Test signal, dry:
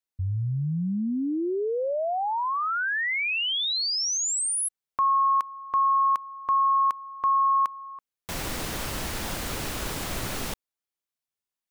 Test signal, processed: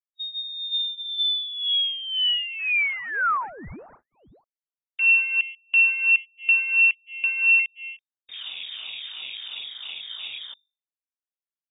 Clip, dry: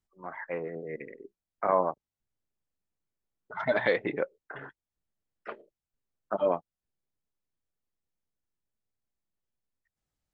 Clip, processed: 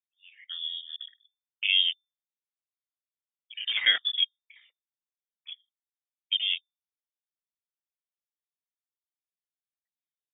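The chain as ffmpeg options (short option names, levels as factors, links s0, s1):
-af "afftfilt=real='re*pow(10,13/40*sin(2*PI*(0.6*log(max(b,1)*sr/1024/100)/log(2)-(2.9)*(pts-256)/sr)))':imag='im*pow(10,13/40*sin(2*PI*(0.6*log(max(b,1)*sr/1024/100)/log(2)-(2.9)*(pts-256)/sr)))':win_size=1024:overlap=0.75,highpass=f=160:p=1,bandreject=f=50:t=h:w=6,bandreject=f=100:t=h:w=6,bandreject=f=150:t=h:w=6,bandreject=f=200:t=h:w=6,bandreject=f=250:t=h:w=6,afwtdn=0.0316,lowpass=f=3200:t=q:w=0.5098,lowpass=f=3200:t=q:w=0.6013,lowpass=f=3200:t=q:w=0.9,lowpass=f=3200:t=q:w=2.563,afreqshift=-3800"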